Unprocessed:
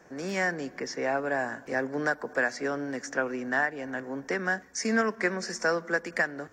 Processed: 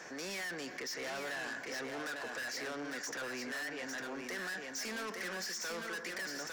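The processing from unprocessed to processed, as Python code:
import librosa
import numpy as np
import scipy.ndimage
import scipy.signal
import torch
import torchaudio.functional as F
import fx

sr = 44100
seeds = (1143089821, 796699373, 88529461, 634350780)

y = fx.peak_eq(x, sr, hz=3900.0, db=12.5, octaves=2.7)
y = 10.0 ** (-31.5 / 20.0) * np.tanh(y / 10.0 ** (-31.5 / 20.0))
y = fx.low_shelf(y, sr, hz=170.0, db=-10.0)
y = y + 10.0 ** (-6.0 / 20.0) * np.pad(y, (int(853 * sr / 1000.0), 0))[:len(y)]
y = fx.env_flatten(y, sr, amount_pct=50)
y = y * librosa.db_to_amplitude(-7.5)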